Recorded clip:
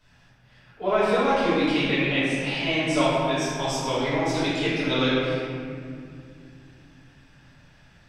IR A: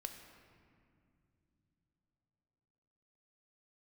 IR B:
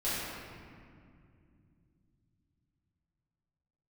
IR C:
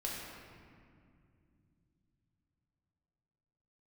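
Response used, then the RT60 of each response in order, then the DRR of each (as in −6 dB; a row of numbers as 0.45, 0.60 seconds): B; non-exponential decay, 2.3 s, 2.4 s; 5.0, −12.0, −4.0 decibels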